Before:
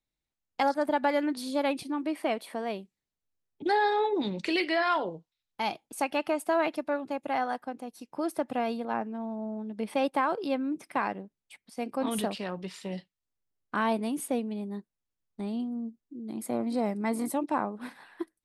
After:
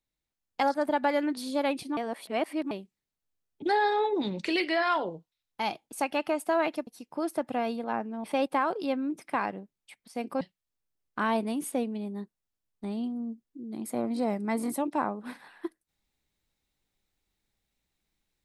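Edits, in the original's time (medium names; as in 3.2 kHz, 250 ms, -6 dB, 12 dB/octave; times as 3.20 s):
1.97–2.71 s: reverse
6.87–7.88 s: delete
9.25–9.86 s: delete
12.03–12.97 s: delete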